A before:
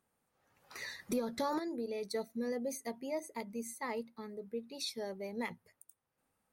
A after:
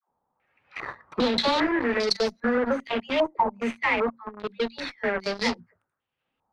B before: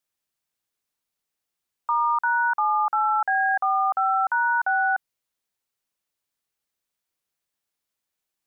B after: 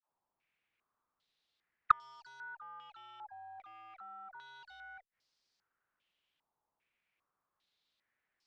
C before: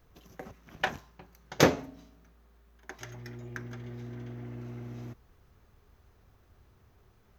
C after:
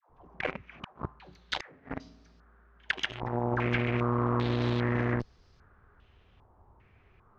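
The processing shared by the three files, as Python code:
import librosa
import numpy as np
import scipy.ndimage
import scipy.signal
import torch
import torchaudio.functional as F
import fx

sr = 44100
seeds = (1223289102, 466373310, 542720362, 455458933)

p1 = fx.dispersion(x, sr, late='lows', ms=97.0, hz=600.0)
p2 = fx.fuzz(p1, sr, gain_db=44.0, gate_db=-41.0)
p3 = p1 + (p2 * librosa.db_to_amplitude(-9.5))
p4 = fx.gate_flip(p3, sr, shuts_db=-16.0, range_db=-39)
y = fx.filter_held_lowpass(p4, sr, hz=2.5, low_hz=920.0, high_hz=4900.0)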